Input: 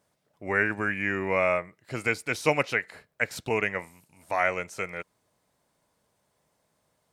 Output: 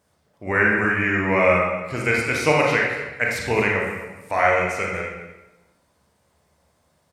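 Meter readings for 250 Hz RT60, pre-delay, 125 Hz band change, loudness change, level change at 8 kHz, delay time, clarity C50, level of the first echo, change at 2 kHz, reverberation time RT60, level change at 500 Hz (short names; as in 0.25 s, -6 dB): 1.1 s, 29 ms, +9.5 dB, +7.5 dB, +6.0 dB, 0.235 s, 1.0 dB, -14.0 dB, +7.5 dB, 1.1 s, +7.5 dB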